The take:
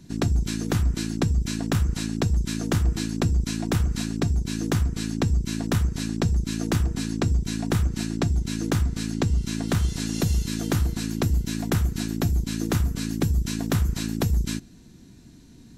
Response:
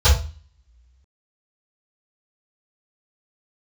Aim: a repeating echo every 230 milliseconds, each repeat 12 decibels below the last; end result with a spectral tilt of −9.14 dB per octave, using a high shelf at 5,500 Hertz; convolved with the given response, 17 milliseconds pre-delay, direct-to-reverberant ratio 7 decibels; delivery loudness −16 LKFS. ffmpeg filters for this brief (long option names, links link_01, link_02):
-filter_complex "[0:a]highshelf=frequency=5500:gain=-5,aecho=1:1:230|460|690:0.251|0.0628|0.0157,asplit=2[link_01][link_02];[1:a]atrim=start_sample=2205,adelay=17[link_03];[link_02][link_03]afir=irnorm=-1:irlink=0,volume=-27dB[link_04];[link_01][link_04]amix=inputs=2:normalize=0,volume=-7dB"